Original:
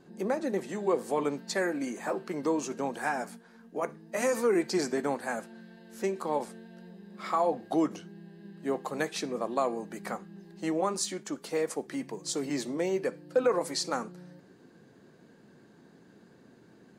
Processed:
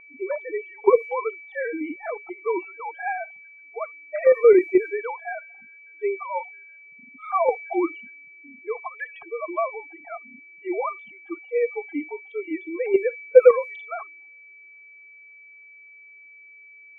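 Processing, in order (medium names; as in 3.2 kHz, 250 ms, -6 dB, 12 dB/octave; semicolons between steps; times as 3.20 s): formants replaced by sine waves; spectral noise reduction 26 dB; in parallel at +1.5 dB: level held to a coarse grid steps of 24 dB; on the sum: whistle 2.3 kHz -40 dBFS; word length cut 12-bit, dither none; level-controlled noise filter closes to 1.1 kHz, open at -18 dBFS; trim +4.5 dB; Opus 96 kbps 48 kHz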